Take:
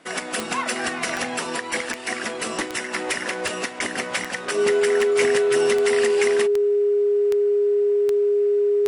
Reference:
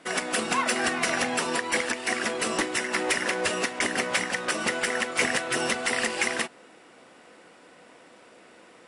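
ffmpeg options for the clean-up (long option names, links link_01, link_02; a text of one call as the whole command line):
ffmpeg -i in.wav -af "adeclick=threshold=4,bandreject=frequency=410:width=30" out.wav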